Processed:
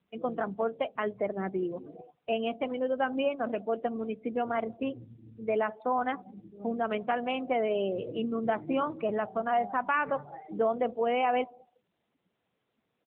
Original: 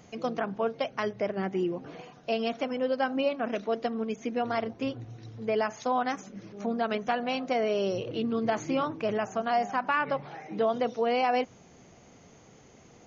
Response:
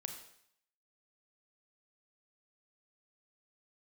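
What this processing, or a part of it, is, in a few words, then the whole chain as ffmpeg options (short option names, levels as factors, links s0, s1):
mobile call with aggressive noise cancelling: -af "highpass=f=130:p=1,aecho=1:1:195|390:0.0794|0.0246,afftdn=nr=29:nf=-38" -ar 8000 -c:a libopencore_amrnb -b:a 10200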